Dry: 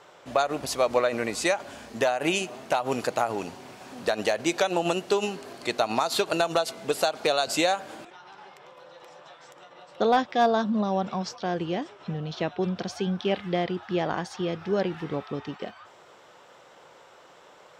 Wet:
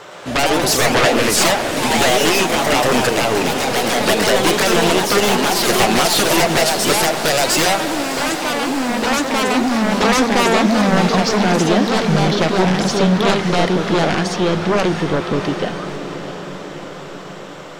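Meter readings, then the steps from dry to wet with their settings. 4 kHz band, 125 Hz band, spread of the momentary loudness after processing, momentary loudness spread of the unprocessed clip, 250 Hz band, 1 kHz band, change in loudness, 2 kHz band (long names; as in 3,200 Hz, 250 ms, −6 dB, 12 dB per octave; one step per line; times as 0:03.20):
+15.0 dB, +14.5 dB, 10 LU, 11 LU, +13.5 dB, +11.0 dB, +11.5 dB, +14.5 dB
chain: parametric band 860 Hz −3.5 dB 0.44 octaves
sine wavefolder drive 13 dB, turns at −11.5 dBFS
feedback delay with all-pass diffusion 663 ms, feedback 62%, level −10 dB
delay with pitch and tempo change per echo 114 ms, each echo +2 semitones, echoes 3
level −1 dB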